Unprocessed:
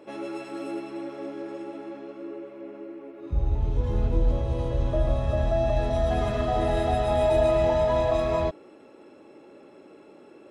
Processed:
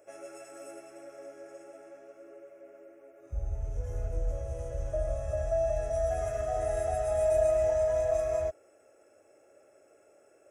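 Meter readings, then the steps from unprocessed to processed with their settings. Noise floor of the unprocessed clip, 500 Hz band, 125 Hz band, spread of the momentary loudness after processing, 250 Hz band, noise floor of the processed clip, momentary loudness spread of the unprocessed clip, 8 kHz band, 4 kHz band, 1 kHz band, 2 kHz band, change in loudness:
-51 dBFS, -3.5 dB, -10.0 dB, 21 LU, -20.0 dB, -62 dBFS, 17 LU, n/a, under -15 dB, -9.0 dB, -9.5 dB, -4.5 dB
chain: EQ curve 100 Hz 0 dB, 200 Hz -17 dB, 330 Hz -10 dB, 670 Hz +7 dB, 960 Hz -13 dB, 1400 Hz +2 dB, 2400 Hz -2 dB, 4100 Hz -16 dB, 6000 Hz +13 dB; gain -9 dB

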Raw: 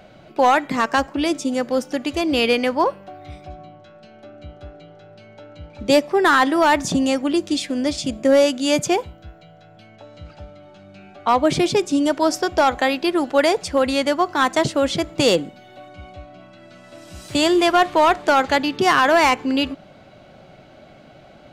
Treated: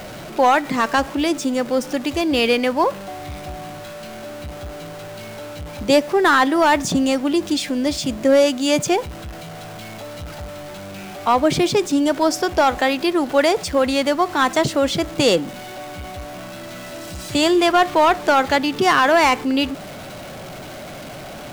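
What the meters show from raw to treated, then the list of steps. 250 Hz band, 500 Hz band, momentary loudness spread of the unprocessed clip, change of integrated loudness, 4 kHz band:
+1.0 dB, +0.5 dB, 8 LU, +0.5 dB, +1.0 dB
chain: zero-crossing step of -30.5 dBFS

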